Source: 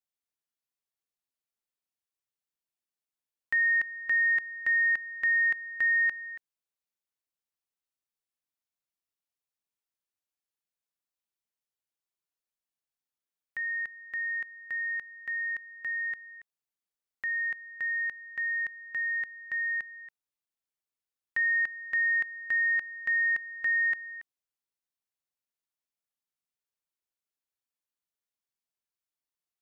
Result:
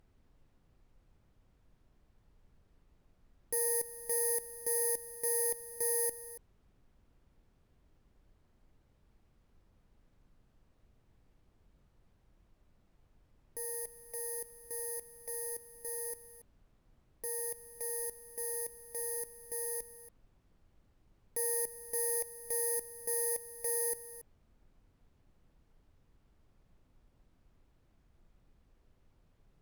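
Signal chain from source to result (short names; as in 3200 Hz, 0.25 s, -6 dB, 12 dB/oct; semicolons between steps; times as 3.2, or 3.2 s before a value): FFT order left unsorted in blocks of 32 samples; high shelf 2200 Hz -8 dB; added noise brown -64 dBFS; added harmonics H 2 -15 dB, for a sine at -14.5 dBFS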